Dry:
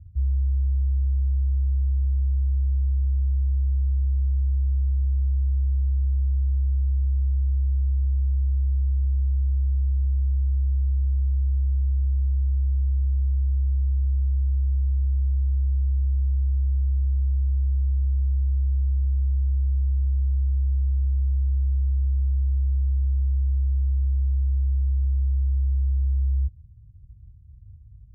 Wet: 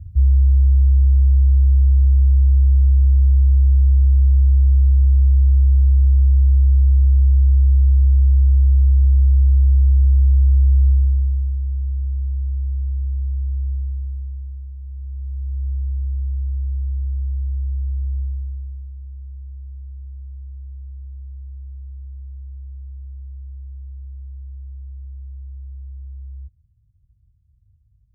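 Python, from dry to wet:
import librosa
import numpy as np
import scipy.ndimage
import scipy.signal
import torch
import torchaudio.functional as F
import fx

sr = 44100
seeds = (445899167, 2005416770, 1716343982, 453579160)

y = fx.gain(x, sr, db=fx.line((10.89, 9.5), (11.58, 0.0), (13.71, 0.0), (14.76, -11.5), (15.68, -0.5), (18.2, -0.5), (18.92, -12.0)))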